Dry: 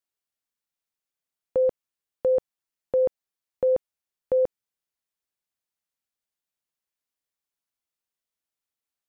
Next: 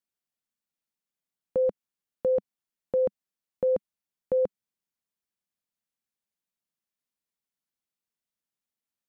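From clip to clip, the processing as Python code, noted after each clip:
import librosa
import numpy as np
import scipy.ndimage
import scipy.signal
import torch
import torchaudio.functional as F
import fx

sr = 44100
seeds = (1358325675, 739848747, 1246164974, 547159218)

y = fx.peak_eq(x, sr, hz=200.0, db=9.0, octaves=0.86)
y = F.gain(torch.from_numpy(y), -3.5).numpy()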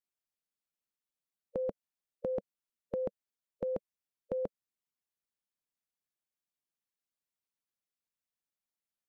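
y = fx.hpss(x, sr, part='harmonic', gain_db=-9)
y = F.gain(torch.from_numpy(y), -2.0).numpy()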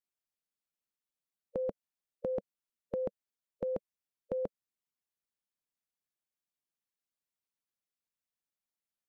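y = x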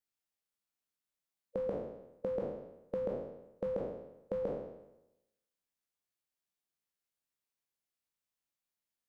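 y = fx.spec_trails(x, sr, decay_s=0.92)
y = F.gain(torch.from_numpy(y), -2.0).numpy()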